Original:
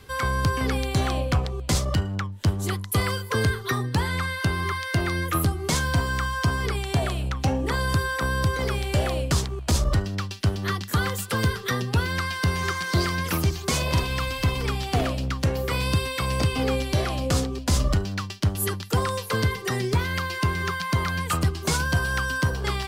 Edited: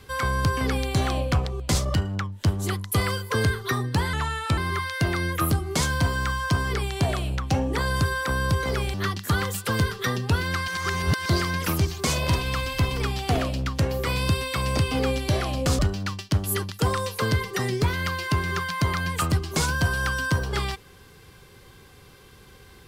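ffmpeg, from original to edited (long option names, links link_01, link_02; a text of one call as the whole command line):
ffmpeg -i in.wav -filter_complex "[0:a]asplit=7[link_01][link_02][link_03][link_04][link_05][link_06][link_07];[link_01]atrim=end=4.134[link_08];[link_02]atrim=start=4.13:end=4.51,asetpts=PTS-STARTPTS,asetrate=37485,aresample=44100,atrim=end_sample=19715,asetpts=PTS-STARTPTS[link_09];[link_03]atrim=start=4.506:end=8.872[link_10];[link_04]atrim=start=10.578:end=12.322[link_11];[link_05]atrim=start=12.318:end=12.902,asetpts=PTS-STARTPTS,areverse[link_12];[link_06]atrim=start=12.898:end=17.432[link_13];[link_07]atrim=start=17.898[link_14];[link_08][link_09]acrossfade=duration=0.004:curve1=hsin:curve2=hsin[link_15];[link_15][link_10]acrossfade=duration=0.004:curve1=hsin:curve2=hsin[link_16];[link_16][link_11]acrossfade=duration=0.004:curve1=hsin:curve2=hsin[link_17];[link_17][link_12]acrossfade=duration=0.004:curve1=hsin:curve2=hsin[link_18];[link_18][link_13]acrossfade=duration=0.004:curve1=hsin:curve2=hsin[link_19];[link_19][link_14]acrossfade=duration=0.004:curve1=hsin:curve2=hsin" out.wav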